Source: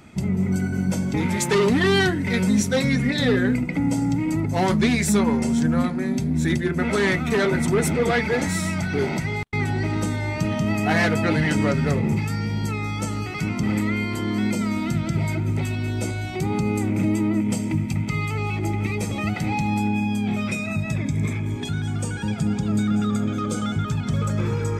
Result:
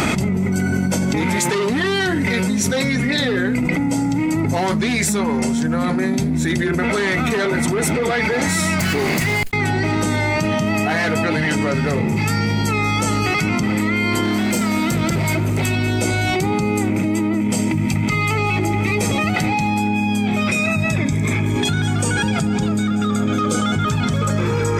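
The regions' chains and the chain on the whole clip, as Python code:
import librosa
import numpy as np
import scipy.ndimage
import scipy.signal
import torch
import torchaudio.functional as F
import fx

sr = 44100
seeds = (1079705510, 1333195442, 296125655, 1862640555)

y = fx.chain(x, sr, fx.lower_of_two(delay_ms=0.42),
    fx.high_shelf(hz=8300.0, db=11.5), at=(8.79, 9.5))
y = fx.chain(y, sr, fx.high_shelf(hz=9300.0, db=9.5),
    fx.overload_stage(gain_db=20.0), at=(14.23, 15.66))
y = fx.low_shelf(y, sr, hz=220.0, db=-8.0)
y = fx.env_flatten(y, sr, amount_pct=100)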